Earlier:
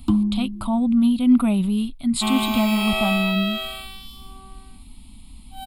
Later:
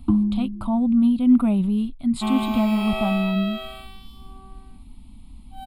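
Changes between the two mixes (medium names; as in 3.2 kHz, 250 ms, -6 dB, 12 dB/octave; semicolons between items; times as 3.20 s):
first sound: add low-pass 2.2 kHz; master: add treble shelf 2 kHz -12 dB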